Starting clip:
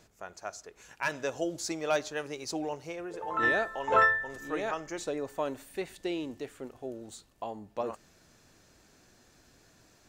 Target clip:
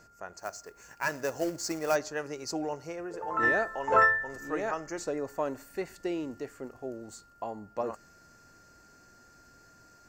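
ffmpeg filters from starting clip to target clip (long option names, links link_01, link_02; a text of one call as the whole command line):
ffmpeg -i in.wav -filter_complex "[0:a]aeval=exprs='val(0)+0.00112*sin(2*PI*1400*n/s)':channel_layout=same,asplit=3[link_01][link_02][link_03];[link_01]afade=type=out:start_time=0.38:duration=0.02[link_04];[link_02]acrusher=bits=3:mode=log:mix=0:aa=0.000001,afade=type=in:start_time=0.38:duration=0.02,afade=type=out:start_time=1.94:duration=0.02[link_05];[link_03]afade=type=in:start_time=1.94:duration=0.02[link_06];[link_04][link_05][link_06]amix=inputs=3:normalize=0,superequalizer=12b=0.562:13b=0.282:16b=0.447,volume=1dB" out.wav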